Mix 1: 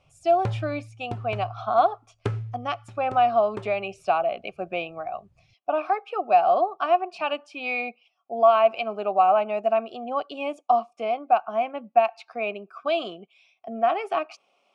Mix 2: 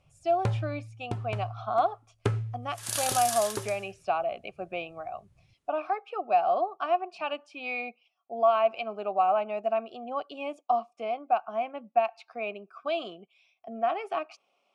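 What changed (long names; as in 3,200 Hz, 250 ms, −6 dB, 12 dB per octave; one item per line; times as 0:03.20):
speech −5.5 dB
first sound: remove high-frequency loss of the air 57 metres
second sound: unmuted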